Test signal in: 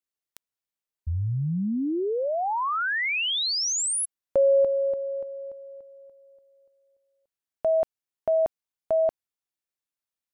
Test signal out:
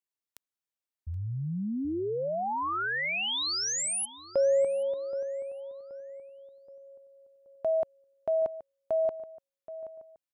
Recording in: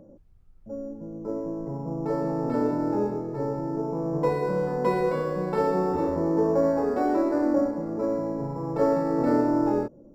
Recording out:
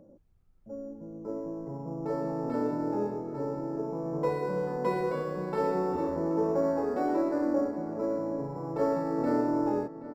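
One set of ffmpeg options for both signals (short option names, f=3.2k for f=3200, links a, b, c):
-filter_complex "[0:a]lowshelf=f=85:g=-6.5,asplit=2[a][b];[b]adelay=776,lowpass=f=2.4k:p=1,volume=-14dB,asplit=2[c][d];[d]adelay=776,lowpass=f=2.4k:p=1,volume=0.47,asplit=2[e][f];[f]adelay=776,lowpass=f=2.4k:p=1,volume=0.47,asplit=2[g][h];[h]adelay=776,lowpass=f=2.4k:p=1,volume=0.47[i];[a][c][e][g][i]amix=inputs=5:normalize=0,volume=-4.5dB"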